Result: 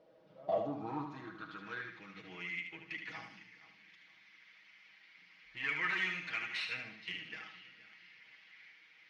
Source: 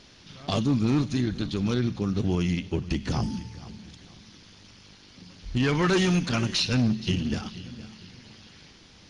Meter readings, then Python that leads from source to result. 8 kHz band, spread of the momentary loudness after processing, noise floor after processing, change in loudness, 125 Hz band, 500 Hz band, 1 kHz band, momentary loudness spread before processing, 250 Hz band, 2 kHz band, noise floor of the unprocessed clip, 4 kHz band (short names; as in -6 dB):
under -20 dB, 24 LU, -64 dBFS, -13.0 dB, -28.5 dB, -12.0 dB, -8.5 dB, 19 LU, -23.5 dB, -2.5 dB, -53 dBFS, -14.0 dB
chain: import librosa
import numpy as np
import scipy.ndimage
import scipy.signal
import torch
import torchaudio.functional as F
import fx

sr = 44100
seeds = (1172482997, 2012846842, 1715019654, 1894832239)

p1 = fx.tracing_dist(x, sr, depth_ms=0.025)
p2 = fx.high_shelf(p1, sr, hz=4700.0, db=-9.5)
p3 = p2 + 0.81 * np.pad(p2, (int(6.3 * sr / 1000.0), 0))[:len(p2)]
p4 = fx.filter_sweep_bandpass(p3, sr, from_hz=560.0, to_hz=2100.0, start_s=0.38, end_s=2.03, q=5.4)
p5 = 10.0 ** (-33.0 / 20.0) * np.tanh(p4 / 10.0 ** (-33.0 / 20.0))
p6 = p4 + F.gain(torch.from_numpy(p5), -11.5).numpy()
y = fx.echo_feedback(p6, sr, ms=75, feedback_pct=35, wet_db=-6.5)